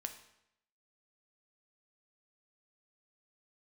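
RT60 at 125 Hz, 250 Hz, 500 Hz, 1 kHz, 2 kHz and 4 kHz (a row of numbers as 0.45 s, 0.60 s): 0.85 s, 0.80 s, 0.80 s, 0.80 s, 0.80 s, 0.70 s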